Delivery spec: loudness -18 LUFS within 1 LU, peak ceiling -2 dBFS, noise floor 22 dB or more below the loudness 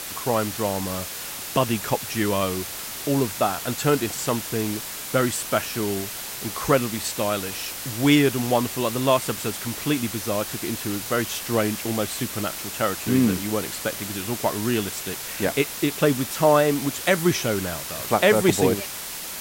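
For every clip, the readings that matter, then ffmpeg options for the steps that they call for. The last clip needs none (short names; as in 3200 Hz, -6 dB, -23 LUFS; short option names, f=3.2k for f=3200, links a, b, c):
noise floor -34 dBFS; noise floor target -46 dBFS; loudness -24.0 LUFS; peak -5.5 dBFS; loudness target -18.0 LUFS
-> -af "afftdn=nr=12:nf=-34"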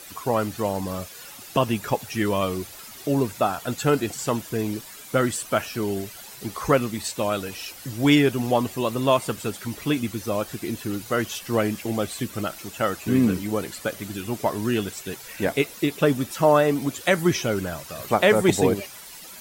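noise floor -42 dBFS; noise floor target -47 dBFS
-> -af "afftdn=nr=6:nf=-42"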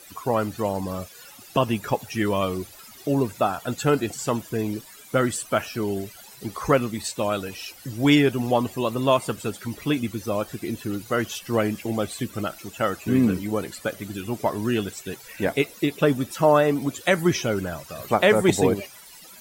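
noise floor -46 dBFS; noise floor target -47 dBFS
-> -af "afftdn=nr=6:nf=-46"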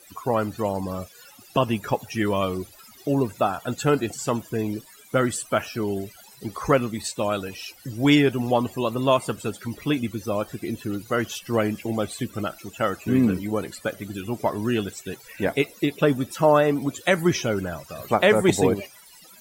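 noise floor -50 dBFS; loudness -24.5 LUFS; peak -6.0 dBFS; loudness target -18.0 LUFS
-> -af "volume=6.5dB,alimiter=limit=-2dB:level=0:latency=1"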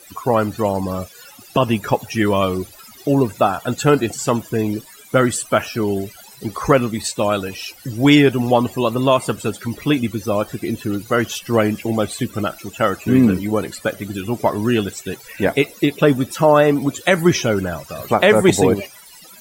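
loudness -18.5 LUFS; peak -2.0 dBFS; noise floor -43 dBFS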